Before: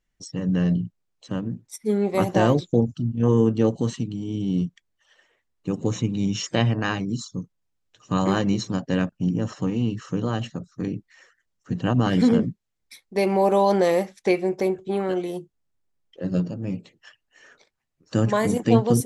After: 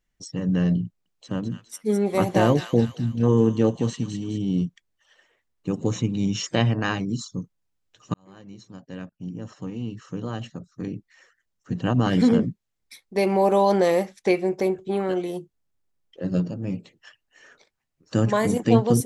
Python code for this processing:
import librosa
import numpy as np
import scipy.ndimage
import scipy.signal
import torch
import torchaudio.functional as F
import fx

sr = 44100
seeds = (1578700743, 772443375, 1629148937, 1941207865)

y = fx.echo_wet_highpass(x, sr, ms=207, feedback_pct=44, hz=1800.0, wet_db=-5.0, at=(0.85, 4.38))
y = fx.edit(y, sr, fx.fade_in_span(start_s=8.14, length_s=4.02), tone=tone)